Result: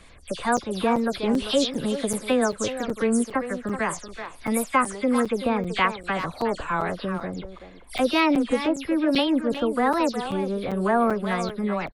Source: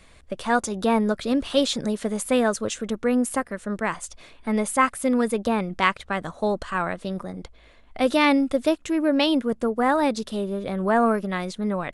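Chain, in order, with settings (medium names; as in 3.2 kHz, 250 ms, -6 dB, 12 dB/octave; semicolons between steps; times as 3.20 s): delay that grows with frequency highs early, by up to 114 ms; in parallel at -1 dB: compression, threshold -28 dBFS, peak gain reduction 13.5 dB; on the sum: speakerphone echo 380 ms, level -9 dB; crackling interface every 0.39 s, samples 256, zero, from 0.57 s; warped record 33 1/3 rpm, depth 160 cents; trim -3 dB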